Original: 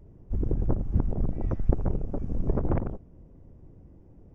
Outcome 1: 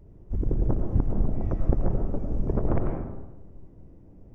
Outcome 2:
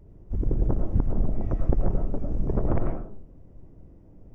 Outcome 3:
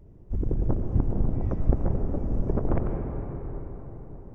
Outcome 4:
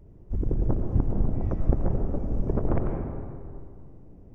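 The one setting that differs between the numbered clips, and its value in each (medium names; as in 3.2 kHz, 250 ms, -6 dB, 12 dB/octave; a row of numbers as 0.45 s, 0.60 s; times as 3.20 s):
algorithmic reverb, RT60: 1.1 s, 0.42 s, 4.9 s, 2.3 s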